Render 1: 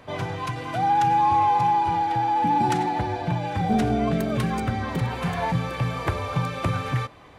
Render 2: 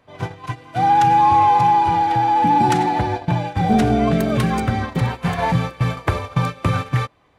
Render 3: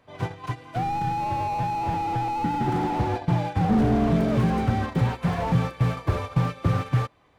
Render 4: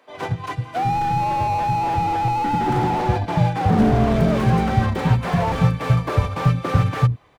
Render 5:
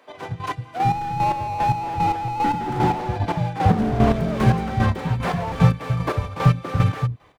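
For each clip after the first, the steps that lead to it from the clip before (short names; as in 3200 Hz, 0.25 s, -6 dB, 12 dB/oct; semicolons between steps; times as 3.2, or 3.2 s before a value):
gate -27 dBFS, range -16 dB; gain +6 dB
slew limiter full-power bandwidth 53 Hz; gain -2.5 dB
bands offset in time highs, lows 90 ms, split 250 Hz; gain +6 dB
chopper 2.5 Hz, depth 60%, duty 30%; gain +2 dB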